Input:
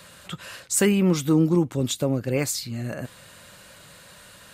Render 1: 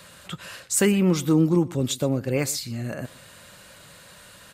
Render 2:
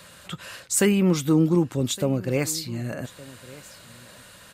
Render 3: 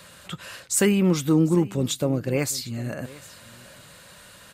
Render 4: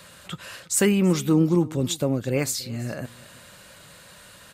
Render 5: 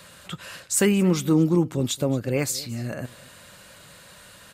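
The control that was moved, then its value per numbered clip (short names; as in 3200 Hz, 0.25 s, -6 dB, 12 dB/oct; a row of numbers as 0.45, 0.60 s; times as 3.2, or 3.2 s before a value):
echo, time: 0.121, 1.164, 0.75, 0.331, 0.225 s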